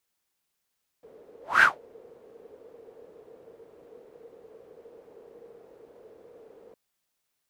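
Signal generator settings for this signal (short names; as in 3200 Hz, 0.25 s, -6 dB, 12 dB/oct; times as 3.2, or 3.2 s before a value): whoosh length 5.71 s, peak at 0.59, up 0.22 s, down 0.18 s, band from 460 Hz, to 1600 Hz, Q 8.9, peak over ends 34 dB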